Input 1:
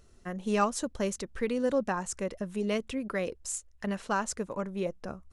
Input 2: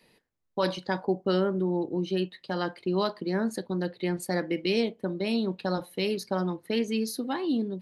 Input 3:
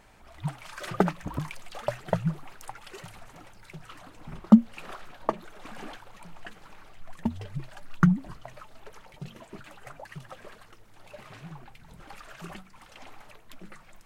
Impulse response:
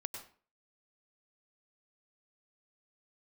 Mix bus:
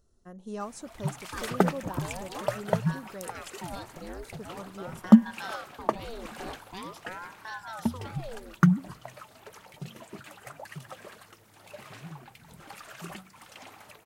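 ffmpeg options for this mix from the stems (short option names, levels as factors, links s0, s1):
-filter_complex "[0:a]equalizer=f=2300:t=o:w=0.78:g=-13.5,volume=0.355,asplit=3[s0][s1][s2];[s0]atrim=end=3.5,asetpts=PTS-STARTPTS,afade=t=out:st=3.496:d=0.004:c=hsin[s3];[s1]atrim=start=3.5:end=4.35,asetpts=PTS-STARTPTS,volume=0[s4];[s2]atrim=start=4.35,asetpts=PTS-STARTPTS,afade=t=in:d=0.004:c=hsin[s5];[s3][s4][s5]concat=n=3:v=0:a=1,asplit=2[s6][s7];[1:a]aeval=exprs='val(0)*sin(2*PI*730*n/s+730*0.8/0.45*sin(2*PI*0.45*n/s))':c=same,adelay=750,volume=0.251,asplit=2[s8][s9];[s9]volume=0.355[s10];[2:a]highpass=86,highshelf=f=6800:g=8.5,adelay=600,volume=1,asplit=2[s11][s12];[s12]volume=0.0891[s13];[s7]apad=whole_len=377892[s14];[s8][s14]sidechaincompress=threshold=0.00631:ratio=8:attack=16:release=190[s15];[3:a]atrim=start_sample=2205[s16];[s10][s13]amix=inputs=2:normalize=0[s17];[s17][s16]afir=irnorm=-1:irlink=0[s18];[s6][s15][s11][s18]amix=inputs=4:normalize=0"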